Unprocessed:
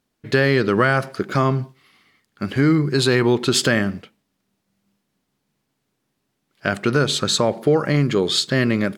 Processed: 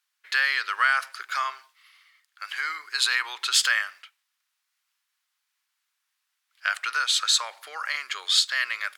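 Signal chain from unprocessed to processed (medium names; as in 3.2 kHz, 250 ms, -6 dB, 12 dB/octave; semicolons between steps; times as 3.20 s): de-esser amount 30%; high-pass 1.2 kHz 24 dB/octave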